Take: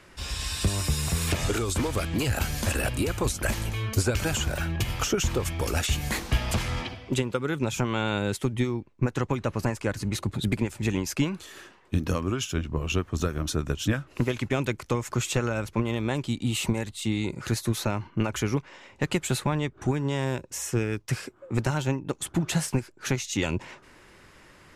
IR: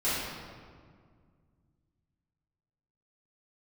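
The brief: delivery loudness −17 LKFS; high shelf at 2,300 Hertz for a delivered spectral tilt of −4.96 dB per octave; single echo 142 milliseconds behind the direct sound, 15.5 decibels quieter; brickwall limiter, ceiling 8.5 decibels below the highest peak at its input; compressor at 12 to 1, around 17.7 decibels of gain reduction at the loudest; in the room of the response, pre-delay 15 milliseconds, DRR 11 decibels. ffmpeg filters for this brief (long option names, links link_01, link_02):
-filter_complex "[0:a]highshelf=frequency=2300:gain=-6.5,acompressor=threshold=-38dB:ratio=12,alimiter=level_in=10dB:limit=-24dB:level=0:latency=1,volume=-10dB,aecho=1:1:142:0.168,asplit=2[link_01][link_02];[1:a]atrim=start_sample=2205,adelay=15[link_03];[link_02][link_03]afir=irnorm=-1:irlink=0,volume=-21.5dB[link_04];[link_01][link_04]amix=inputs=2:normalize=0,volume=28dB"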